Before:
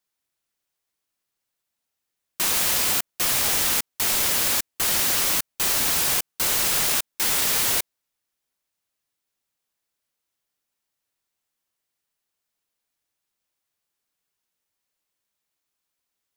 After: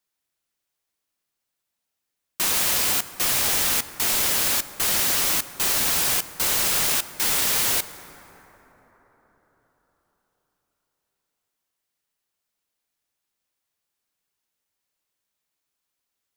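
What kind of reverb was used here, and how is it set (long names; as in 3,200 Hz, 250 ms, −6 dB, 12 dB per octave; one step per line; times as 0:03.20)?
dense smooth reverb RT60 4.8 s, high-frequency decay 0.35×, DRR 13 dB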